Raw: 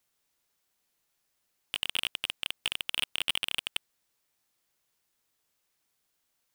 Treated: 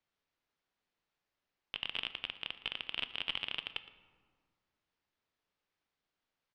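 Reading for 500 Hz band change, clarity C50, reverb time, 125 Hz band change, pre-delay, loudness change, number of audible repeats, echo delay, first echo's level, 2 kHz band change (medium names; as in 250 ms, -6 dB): -3.5 dB, 12.5 dB, 1.8 s, -3.5 dB, 3 ms, -7.0 dB, 1, 115 ms, -18.0 dB, -6.0 dB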